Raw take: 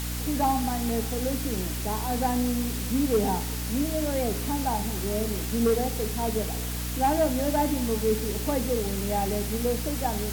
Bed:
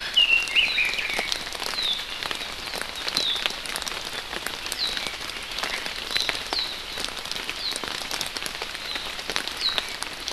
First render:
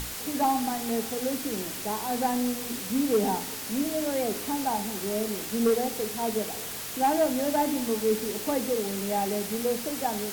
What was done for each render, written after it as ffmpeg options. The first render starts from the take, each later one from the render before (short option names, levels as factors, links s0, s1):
-af "bandreject=f=60:t=h:w=6,bandreject=f=120:t=h:w=6,bandreject=f=180:t=h:w=6,bandreject=f=240:t=h:w=6,bandreject=f=300:t=h:w=6"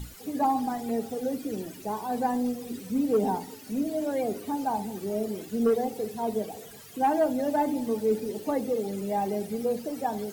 -af "afftdn=nr=16:nf=-36"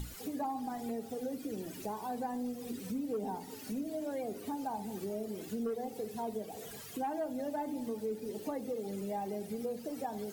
-af "acompressor=threshold=0.0126:ratio=3"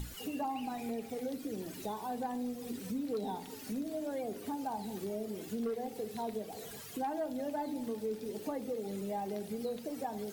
-filter_complex "[1:a]volume=0.0211[s0];[0:a][s0]amix=inputs=2:normalize=0"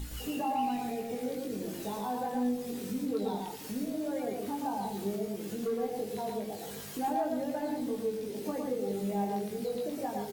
-filter_complex "[0:a]asplit=2[s0][s1];[s1]adelay=20,volume=0.708[s2];[s0][s2]amix=inputs=2:normalize=0,aecho=1:1:113.7|148.7:0.708|0.355"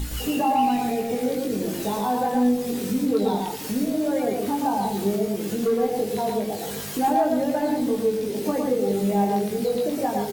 -af "volume=3.35"